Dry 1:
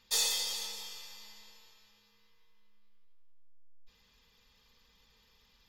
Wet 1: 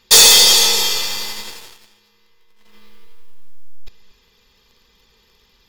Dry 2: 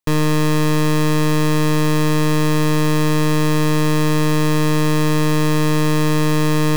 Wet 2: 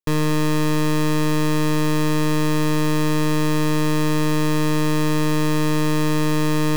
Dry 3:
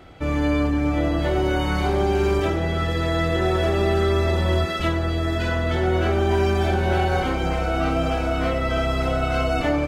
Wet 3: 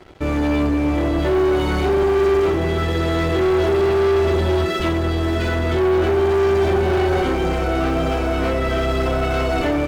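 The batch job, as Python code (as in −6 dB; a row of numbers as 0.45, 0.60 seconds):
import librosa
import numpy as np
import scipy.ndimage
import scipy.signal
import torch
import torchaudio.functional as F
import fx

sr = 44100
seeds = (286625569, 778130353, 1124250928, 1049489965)

y = fx.peak_eq(x, sr, hz=380.0, db=10.0, octaves=0.35)
y = fx.leveller(y, sr, passes=3)
y = y + 10.0 ** (-18.0 / 20.0) * np.pad(y, (int(232 * sr / 1000.0), 0))[:len(y)]
y = y * 10.0 ** (-18 / 20.0) / np.sqrt(np.mean(np.square(y)))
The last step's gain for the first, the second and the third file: +15.5, −7.0, −8.0 decibels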